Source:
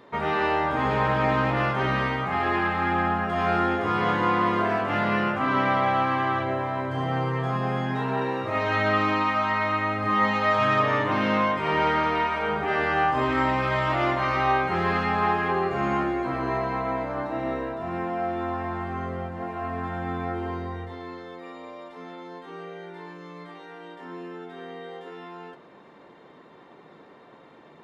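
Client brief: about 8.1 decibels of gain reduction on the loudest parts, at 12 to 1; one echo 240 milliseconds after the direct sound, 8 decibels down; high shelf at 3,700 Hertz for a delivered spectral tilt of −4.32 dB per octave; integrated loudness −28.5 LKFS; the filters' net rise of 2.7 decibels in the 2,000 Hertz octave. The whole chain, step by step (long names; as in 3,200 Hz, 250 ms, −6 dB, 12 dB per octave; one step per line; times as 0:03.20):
parametric band 2,000 Hz +4 dB
high-shelf EQ 3,700 Hz −3.5 dB
downward compressor 12 to 1, threshold −25 dBFS
single-tap delay 240 ms −8 dB
level +0.5 dB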